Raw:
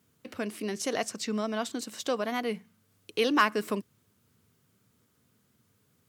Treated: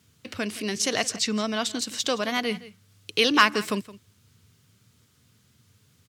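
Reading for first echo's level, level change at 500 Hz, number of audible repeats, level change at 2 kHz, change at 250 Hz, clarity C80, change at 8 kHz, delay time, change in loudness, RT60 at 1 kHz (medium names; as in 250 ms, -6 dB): -18.0 dB, +2.0 dB, 1, +7.0 dB, +3.5 dB, no reverb, +9.5 dB, 168 ms, +5.5 dB, no reverb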